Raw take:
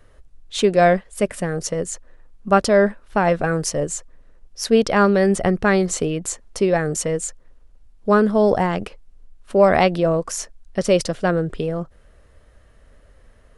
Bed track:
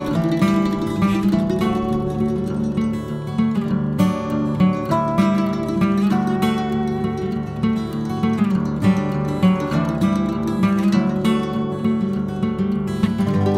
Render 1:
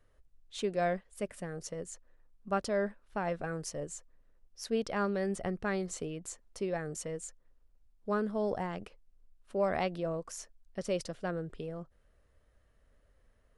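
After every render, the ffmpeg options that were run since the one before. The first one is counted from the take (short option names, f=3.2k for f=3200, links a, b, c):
-af "volume=-16.5dB"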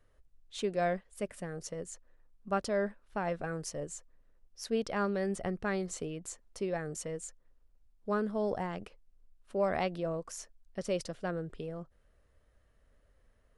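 -af anull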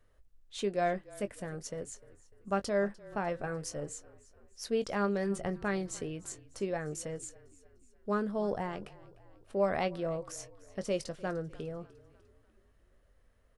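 -filter_complex "[0:a]asplit=2[a][b];[b]adelay=20,volume=-12dB[c];[a][c]amix=inputs=2:normalize=0,asplit=5[d][e][f][g][h];[e]adelay=299,afreqshift=-31,volume=-21dB[i];[f]adelay=598,afreqshift=-62,volume=-26.4dB[j];[g]adelay=897,afreqshift=-93,volume=-31.7dB[k];[h]adelay=1196,afreqshift=-124,volume=-37.1dB[l];[d][i][j][k][l]amix=inputs=5:normalize=0"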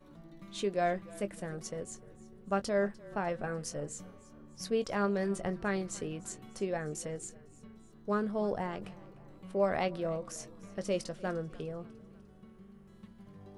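-filter_complex "[1:a]volume=-34.5dB[a];[0:a][a]amix=inputs=2:normalize=0"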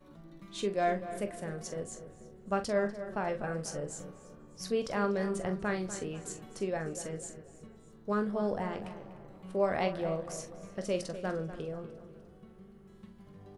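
-filter_complex "[0:a]asplit=2[a][b];[b]adelay=43,volume=-10dB[c];[a][c]amix=inputs=2:normalize=0,asplit=2[d][e];[e]adelay=244,lowpass=f=2.1k:p=1,volume=-12dB,asplit=2[f][g];[g]adelay=244,lowpass=f=2.1k:p=1,volume=0.45,asplit=2[h][i];[i]adelay=244,lowpass=f=2.1k:p=1,volume=0.45,asplit=2[j][k];[k]adelay=244,lowpass=f=2.1k:p=1,volume=0.45,asplit=2[l][m];[m]adelay=244,lowpass=f=2.1k:p=1,volume=0.45[n];[d][f][h][j][l][n]amix=inputs=6:normalize=0"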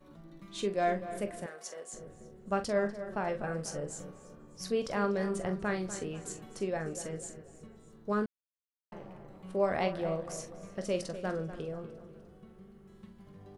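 -filter_complex "[0:a]asettb=1/sr,asplit=3[a][b][c];[a]atrim=end=1.464[d];[b]atrim=start=1.46:end=1.93,asetpts=PTS-STARTPTS,afade=t=in:d=0.004:c=qsin,afade=t=out:st=0.466:d=0.004:c=qsin,highpass=660[e];[c]atrim=start=1.926[f];[d][e]acrossfade=d=0.004:c1=hsin:c2=qsin[g];[g][f]acrossfade=d=0.004:c1=qsin:c2=hsin,asplit=3[h][i][j];[h]atrim=end=8.26,asetpts=PTS-STARTPTS,afade=t=out:st=8.256:d=0.004:c=hsin[k];[i]atrim=start=8.26:end=8.92,asetpts=PTS-STARTPTS,volume=0[l];[j]atrim=start=8.92,asetpts=PTS-STARTPTS,afade=t=in:d=0.004:c=hsin[m];[k][l][m]concat=n=3:v=0:a=1"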